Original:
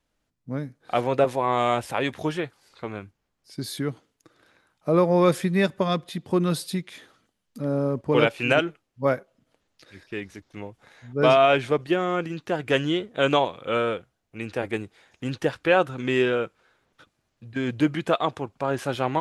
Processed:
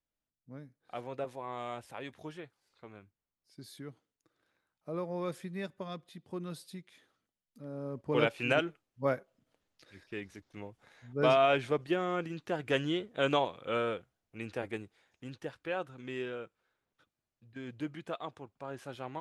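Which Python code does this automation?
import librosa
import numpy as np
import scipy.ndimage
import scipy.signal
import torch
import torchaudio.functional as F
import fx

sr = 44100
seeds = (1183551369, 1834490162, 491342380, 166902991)

y = fx.gain(x, sr, db=fx.line((7.72, -17.5), (8.23, -8.0), (14.47, -8.0), (15.42, -16.5)))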